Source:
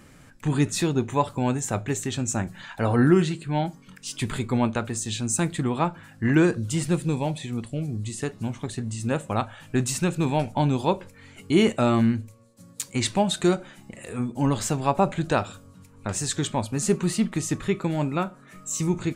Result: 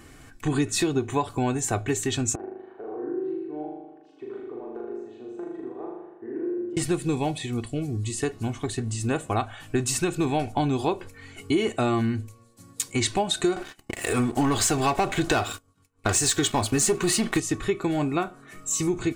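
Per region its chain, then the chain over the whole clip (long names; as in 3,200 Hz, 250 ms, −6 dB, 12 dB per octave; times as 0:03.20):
0:02.35–0:06.77: four-pole ladder band-pass 440 Hz, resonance 65% + downward compressor, threshold −38 dBFS + flutter between parallel walls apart 6.8 metres, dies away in 1.1 s
0:13.56–0:17.40: downward expander −43 dBFS + low-shelf EQ 490 Hz −5.5 dB + leveller curve on the samples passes 3
whole clip: comb filter 2.7 ms, depth 59%; downward compressor, threshold −22 dBFS; level +2 dB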